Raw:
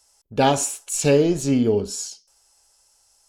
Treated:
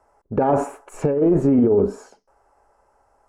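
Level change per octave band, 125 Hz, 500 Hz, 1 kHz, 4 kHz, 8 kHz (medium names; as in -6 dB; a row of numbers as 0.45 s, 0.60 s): 0.0 dB, +1.5 dB, -1.0 dB, under -20 dB, under -20 dB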